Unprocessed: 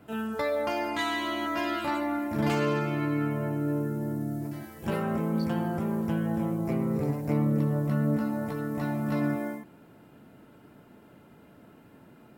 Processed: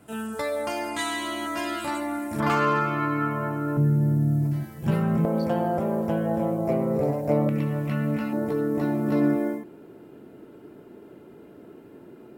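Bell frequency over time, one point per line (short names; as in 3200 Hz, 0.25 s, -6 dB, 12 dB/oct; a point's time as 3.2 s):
bell +14.5 dB 0.84 oct
8800 Hz
from 2.4 s 1200 Hz
from 3.77 s 140 Hz
from 5.25 s 600 Hz
from 7.49 s 2500 Hz
from 8.33 s 380 Hz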